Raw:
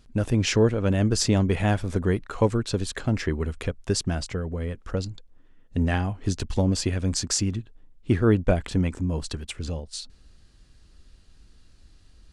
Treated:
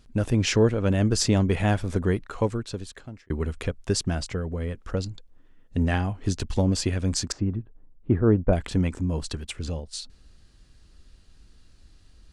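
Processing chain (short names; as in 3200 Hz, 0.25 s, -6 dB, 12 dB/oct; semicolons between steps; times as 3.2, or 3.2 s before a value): 2.05–3.3 fade out; 7.32–8.53 LPF 1100 Hz 12 dB/oct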